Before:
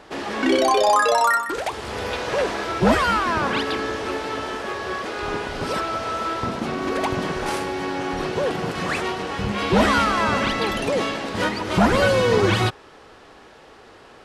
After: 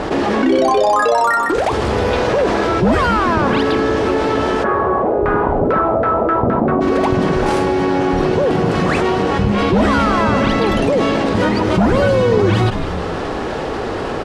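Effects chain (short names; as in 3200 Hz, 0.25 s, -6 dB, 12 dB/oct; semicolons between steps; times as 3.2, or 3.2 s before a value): LPF 9800 Hz 12 dB/oct; tilt shelf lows +5.5 dB; 4.63–6.8 LFO low-pass saw down 1.1 Hz -> 6.6 Hz 530–1700 Hz; frequency-shifting echo 0.155 s, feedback 45%, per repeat -94 Hz, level -22.5 dB; fast leveller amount 70%; gain -1.5 dB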